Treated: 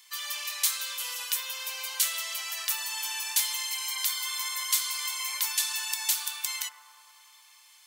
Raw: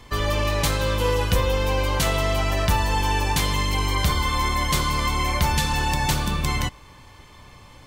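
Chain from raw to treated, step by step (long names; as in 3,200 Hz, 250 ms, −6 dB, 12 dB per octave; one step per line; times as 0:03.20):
high-pass filter 1,200 Hz 12 dB per octave
first difference
bucket-brigade delay 99 ms, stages 1,024, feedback 80%, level −9 dB
level +2.5 dB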